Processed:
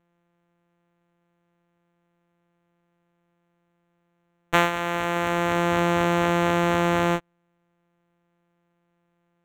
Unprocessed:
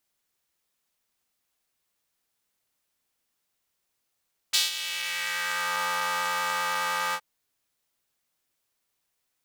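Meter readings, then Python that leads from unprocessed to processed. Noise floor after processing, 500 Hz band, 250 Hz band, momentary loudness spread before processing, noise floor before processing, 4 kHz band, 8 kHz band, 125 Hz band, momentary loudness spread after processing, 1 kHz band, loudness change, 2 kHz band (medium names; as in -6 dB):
-72 dBFS, +17.5 dB, no reading, 4 LU, -79 dBFS, -5.0 dB, -7.0 dB, +27.5 dB, 4 LU, +5.5 dB, +4.5 dB, +2.0 dB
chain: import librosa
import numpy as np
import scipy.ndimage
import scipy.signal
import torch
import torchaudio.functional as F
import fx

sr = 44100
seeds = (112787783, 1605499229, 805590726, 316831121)

y = np.r_[np.sort(x[:len(x) // 256 * 256].reshape(-1, 256), axis=1).ravel(), x[len(x) // 256 * 256:]]
y = np.convolve(y, np.full(9, 1.0 / 9))[:len(y)]
y = F.gain(torch.from_numpy(y), 8.0).numpy()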